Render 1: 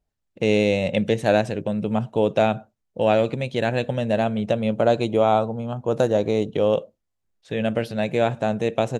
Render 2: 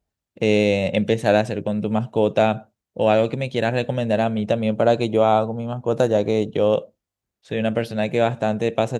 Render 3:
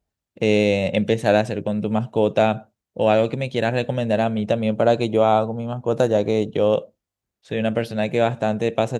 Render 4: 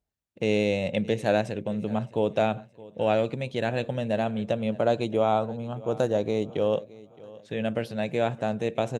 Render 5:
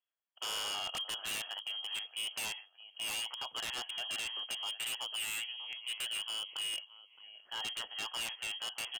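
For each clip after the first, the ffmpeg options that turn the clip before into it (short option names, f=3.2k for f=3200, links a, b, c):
-af "highpass=42,volume=1.5dB"
-af anull
-af "aecho=1:1:618|1236|1854:0.0944|0.034|0.0122,volume=-6.5dB"
-filter_complex "[0:a]lowpass=f=2.9k:t=q:w=0.5098,lowpass=f=2.9k:t=q:w=0.6013,lowpass=f=2.9k:t=q:w=0.9,lowpass=f=2.9k:t=q:w=2.563,afreqshift=-3400,acrossover=split=360 2300:gain=0.158 1 0.0708[a][b][c];[a][b][c]amix=inputs=3:normalize=0,aeval=exprs='0.0251*(abs(mod(val(0)/0.0251+3,4)-2)-1)':c=same"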